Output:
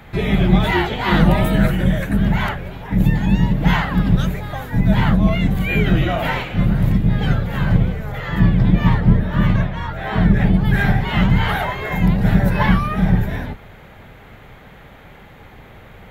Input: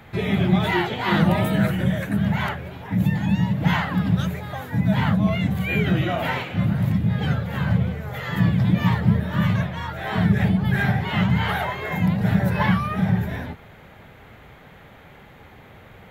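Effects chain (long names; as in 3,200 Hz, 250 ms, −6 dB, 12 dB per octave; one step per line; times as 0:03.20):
sub-octave generator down 2 octaves, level −2 dB
0:08.12–0:10.54: high-shelf EQ 4,400 Hz −8.5 dB
level +3.5 dB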